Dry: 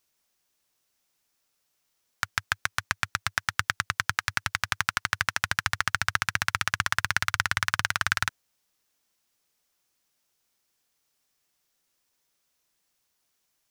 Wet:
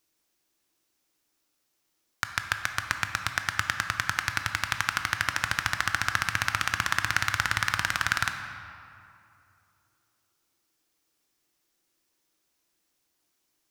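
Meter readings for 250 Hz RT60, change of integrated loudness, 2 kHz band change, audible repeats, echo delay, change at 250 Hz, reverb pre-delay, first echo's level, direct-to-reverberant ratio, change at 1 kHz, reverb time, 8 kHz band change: 2.6 s, 0.0 dB, 0.0 dB, no echo, no echo, +2.5 dB, 15 ms, no echo, 6.0 dB, 0.0 dB, 2.6 s, -0.5 dB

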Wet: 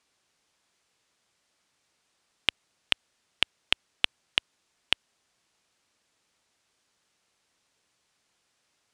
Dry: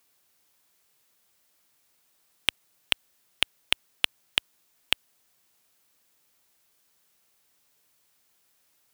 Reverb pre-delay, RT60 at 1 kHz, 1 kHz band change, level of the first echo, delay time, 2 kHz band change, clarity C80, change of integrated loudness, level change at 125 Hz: no reverb, no reverb, 0.0 dB, no echo, no echo, -0.5 dB, no reverb, -0.5 dB, 0.0 dB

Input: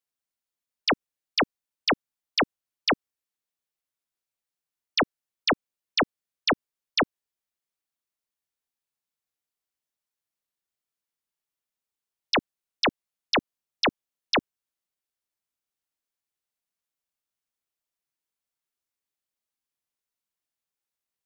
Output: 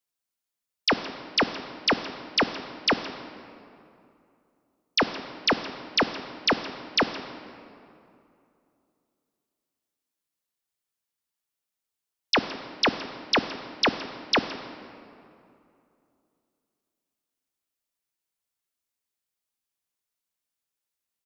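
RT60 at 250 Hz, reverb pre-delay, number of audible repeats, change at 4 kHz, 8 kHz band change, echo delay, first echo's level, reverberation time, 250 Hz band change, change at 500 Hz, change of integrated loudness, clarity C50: 2.9 s, 4 ms, 1, +2.0 dB, no reading, 167 ms, -19.0 dB, 2.7 s, +1.0 dB, +0.5 dB, +1.0 dB, 10.0 dB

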